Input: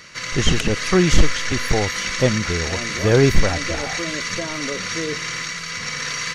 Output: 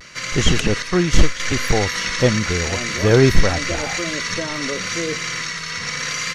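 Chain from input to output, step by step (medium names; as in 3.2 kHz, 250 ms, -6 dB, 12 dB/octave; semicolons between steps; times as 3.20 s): vibrato 0.84 Hz 52 cents; 0.82–1.40 s: upward expansion 1.5:1, over -22 dBFS; trim +1.5 dB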